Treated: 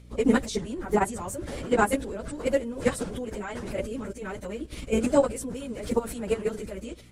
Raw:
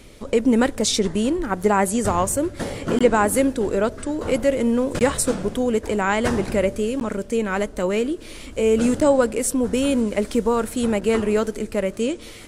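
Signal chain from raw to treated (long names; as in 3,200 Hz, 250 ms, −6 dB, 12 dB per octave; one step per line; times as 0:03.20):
mains hum 60 Hz, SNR 16 dB
output level in coarse steps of 17 dB
time stretch by phase vocoder 0.57×
level +3 dB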